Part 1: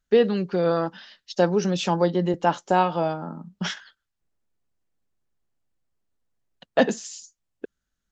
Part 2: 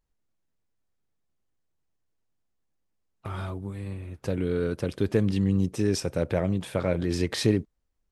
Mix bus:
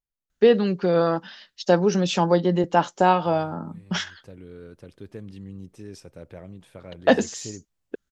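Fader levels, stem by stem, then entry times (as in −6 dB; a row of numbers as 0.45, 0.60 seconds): +2.0, −15.5 decibels; 0.30, 0.00 seconds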